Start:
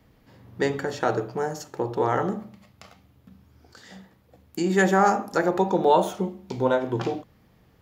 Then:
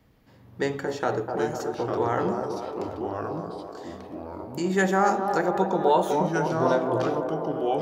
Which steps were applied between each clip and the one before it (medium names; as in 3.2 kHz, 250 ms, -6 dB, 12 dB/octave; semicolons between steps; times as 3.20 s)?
ever faster or slower copies 658 ms, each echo -3 st, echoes 2, each echo -6 dB; feedback echo behind a band-pass 251 ms, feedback 66%, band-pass 580 Hz, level -5 dB; trim -2.5 dB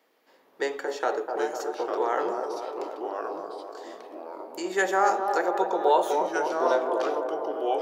high-pass 370 Hz 24 dB/octave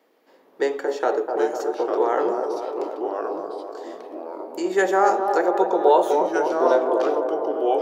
peaking EQ 330 Hz +7.5 dB 2.7 oct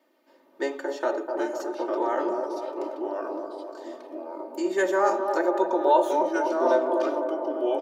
comb 3.3 ms, depth 87%; trim -6 dB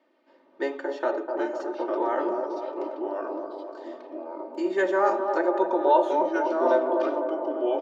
low-pass 3.8 kHz 12 dB/octave